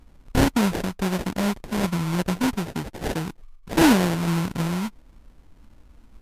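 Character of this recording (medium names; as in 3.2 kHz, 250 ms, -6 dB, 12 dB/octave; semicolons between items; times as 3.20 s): aliases and images of a low sample rate 1.2 kHz, jitter 20%; MP3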